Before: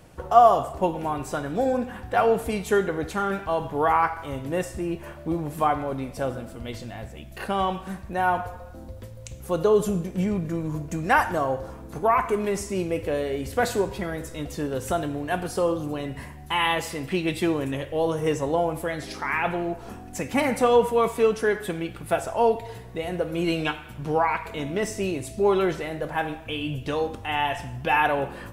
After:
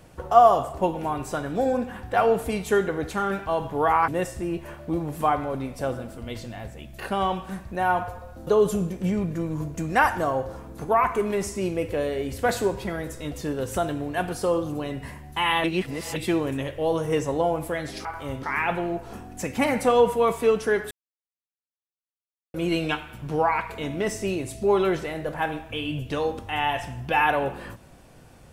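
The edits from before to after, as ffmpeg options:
-filter_complex "[0:a]asplit=9[s0][s1][s2][s3][s4][s5][s6][s7][s8];[s0]atrim=end=4.082[s9];[s1]atrim=start=4.458:end=8.852[s10];[s2]atrim=start=9.608:end=16.782[s11];[s3]atrim=start=16.778:end=17.302,asetpts=PTS-STARTPTS,areverse[s12];[s4]atrim=start=17.298:end=19.192[s13];[s5]atrim=start=4.078:end=4.462[s14];[s6]atrim=start=19.188:end=21.67,asetpts=PTS-STARTPTS,afade=t=out:st=2.478:d=0.004:c=hsin[s15];[s7]atrim=start=21.67:end=23.3,asetpts=PTS-STARTPTS,volume=0[s16];[s8]atrim=start=23.3,asetpts=PTS-STARTPTS,afade=t=in:d=0.004:c=hsin[s17];[s9][s10]acrossfade=d=0.004:c1=hsin:c2=hsin[s18];[s18][s11]acrossfade=d=0.004:c1=hsin:c2=hsin[s19];[s19][s12]acrossfade=d=0.004:c1=hsin:c2=hsin[s20];[s20][s13]acrossfade=d=0.004:c1=hsin:c2=hsin[s21];[s21][s14]acrossfade=d=0.004:c1=hsin:c2=hsin[s22];[s15][s16][s17]concat=n=3:v=0:a=1[s23];[s22][s23]acrossfade=d=0.004:c1=hsin:c2=hsin"

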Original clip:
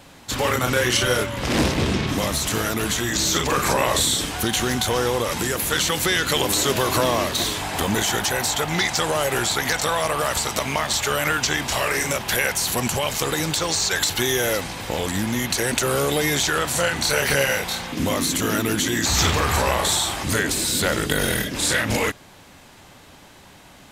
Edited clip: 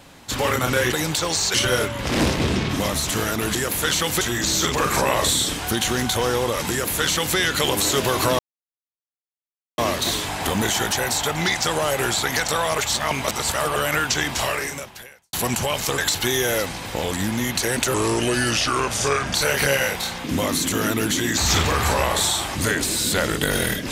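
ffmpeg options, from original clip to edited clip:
-filter_complex "[0:a]asplit=12[s0][s1][s2][s3][s4][s5][s6][s7][s8][s9][s10][s11];[s0]atrim=end=0.922[s12];[s1]atrim=start=13.308:end=13.932[s13];[s2]atrim=start=0.918:end=2.932[s14];[s3]atrim=start=5.428:end=6.092[s15];[s4]atrim=start=2.928:end=7.11,asetpts=PTS-STARTPTS,afade=t=out:st=4.178:d=0.004:c=hsin,apad=pad_dur=1.39[s16];[s5]atrim=start=7.11:end=10.112,asetpts=PTS-STARTPTS,afade=t=in:d=0.004:c=hsin[s17];[s6]atrim=start=10.108:end=11.092,asetpts=PTS-STARTPTS,areverse[s18];[s7]atrim=start=11.088:end=12.66,asetpts=PTS-STARTPTS,afade=t=out:st=0.682:d=0.89:c=qua[s19];[s8]atrim=start=12.66:end=13.312,asetpts=PTS-STARTPTS,afade=t=in:d=0.004:c=hsin[s20];[s9]atrim=start=13.928:end=15.894[s21];[s10]atrim=start=15.89:end=17.03,asetpts=PTS-STARTPTS,asetrate=35721,aresample=44100[s22];[s11]atrim=start=17.026[s23];[s12][s13]acrossfade=d=0.004:c1=hsin:c2=hsin[s24];[s24][s14]acrossfade=d=0.004:c1=hsin:c2=hsin[s25];[s25][s15]acrossfade=d=0.004:c1=hsin:c2=hsin[s26];[s16][s17]concat=n=2:v=0:a=1[s27];[s26][s27]acrossfade=d=0.004:c1=hsin:c2=hsin[s28];[s28][s18]acrossfade=d=0.004:c1=hsin:c2=hsin[s29];[s19][s20]concat=n=2:v=0:a=1[s30];[s29][s30]acrossfade=d=0.004:c1=hsin:c2=hsin[s31];[s31][s21]acrossfade=d=0.004:c1=hsin:c2=hsin[s32];[s32][s22]acrossfade=d=0.004:c1=hsin:c2=hsin[s33];[s33][s23]acrossfade=d=0.004:c1=hsin:c2=hsin"

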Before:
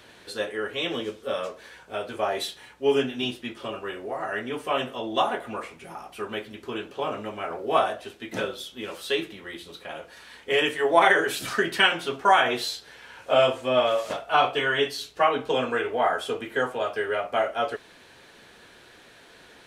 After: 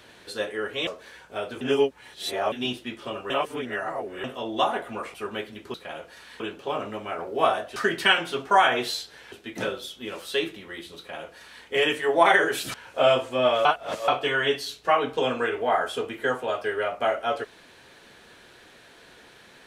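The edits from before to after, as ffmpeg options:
-filter_complex "[0:a]asplit=14[s0][s1][s2][s3][s4][s5][s6][s7][s8][s9][s10][s11][s12][s13];[s0]atrim=end=0.872[s14];[s1]atrim=start=1.448:end=2.192[s15];[s2]atrim=start=2.188:end=3.102,asetpts=PTS-STARTPTS,areverse[s16];[s3]atrim=start=3.098:end=3.882[s17];[s4]atrim=start=3.878:end=4.822,asetpts=PTS-STARTPTS,areverse[s18];[s5]atrim=start=4.818:end=5.722[s19];[s6]atrim=start=6.118:end=6.722[s20];[s7]atrim=start=9.738:end=10.402[s21];[s8]atrim=start=6.718:end=8.082[s22];[s9]atrim=start=11.498:end=13.062[s23];[s10]atrim=start=8.078:end=11.502[s24];[s11]atrim=start=13.058:end=13.972[s25];[s12]atrim=start=13.968:end=14.402,asetpts=PTS-STARTPTS,areverse[s26];[s13]atrim=start=14.398[s27];[s14][s15]acrossfade=d=0.004:c1=hsin:c2=hsin[s28];[s28][s16]acrossfade=d=0.004:c1=hsin:c2=hsin[s29];[s29][s17]acrossfade=d=0.004:c1=hsin:c2=hsin[s30];[s30][s18]acrossfade=d=0.004:c1=hsin:c2=hsin[s31];[s31][s19]acrossfade=d=0.004:c1=hsin:c2=hsin[s32];[s32][s20]acrossfade=d=0.004:c1=hsin:c2=hsin[s33];[s33][s21]acrossfade=d=0.004:c1=hsin:c2=hsin[s34];[s34][s22]acrossfade=d=0.004:c1=hsin:c2=hsin[s35];[s35][s23]acrossfade=d=0.004:c1=hsin:c2=hsin[s36];[s36][s24]acrossfade=d=0.004:c1=hsin:c2=hsin[s37];[s37][s25]acrossfade=d=0.004:c1=hsin:c2=hsin[s38];[s38][s26]acrossfade=d=0.004:c1=hsin:c2=hsin[s39];[s39][s27]acrossfade=d=0.004:c1=hsin:c2=hsin"

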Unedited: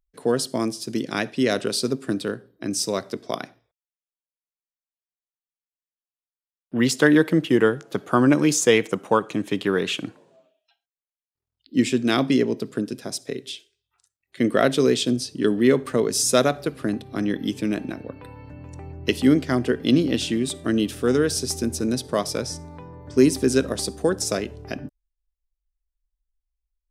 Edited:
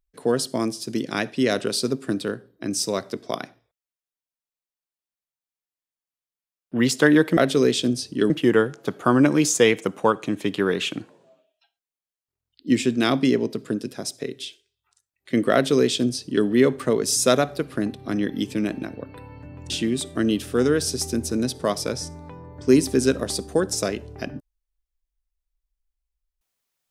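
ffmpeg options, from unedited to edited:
-filter_complex "[0:a]asplit=4[s0][s1][s2][s3];[s0]atrim=end=7.372[s4];[s1]atrim=start=14.598:end=15.532[s5];[s2]atrim=start=7.368:end=18.772[s6];[s3]atrim=start=20.188[s7];[s4][s5]acrossfade=d=0.004:c1=hsin:c2=hsin[s8];[s8][s6]acrossfade=d=0.004:c1=hsin:c2=hsin[s9];[s9][s7]acrossfade=d=0.004:c1=hsin:c2=hsin"

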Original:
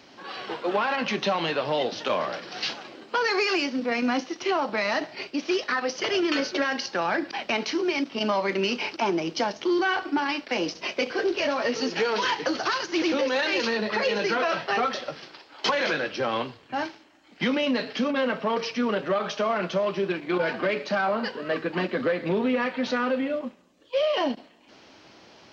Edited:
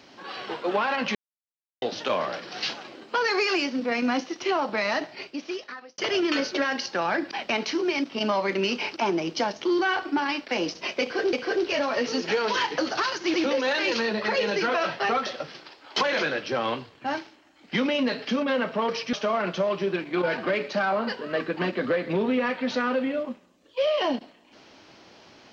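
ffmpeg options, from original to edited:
-filter_complex "[0:a]asplit=6[s0][s1][s2][s3][s4][s5];[s0]atrim=end=1.15,asetpts=PTS-STARTPTS,afade=t=out:st=1.146:d=0.004:c=hsin[s6];[s1]atrim=start=1.15:end=1.82,asetpts=PTS-STARTPTS,volume=0[s7];[s2]atrim=start=1.82:end=5.98,asetpts=PTS-STARTPTS,afade=t=in:d=0.004:c=hsin,afade=t=out:st=3.09:d=1.07[s8];[s3]atrim=start=5.98:end=11.332,asetpts=PTS-STARTPTS,afade=t=in:d=0.004:c=hsin[s9];[s4]atrim=start=11.008:end=18.812[s10];[s5]atrim=start=19.288[s11];[s6][s7][s8][s9]concat=n=4:v=0:a=1[s12];[s12][s10]acrossfade=d=0.004:c1=hsin:c2=hsin[s13];[s13][s11]acrossfade=d=0.004:c1=hsin:c2=hsin"

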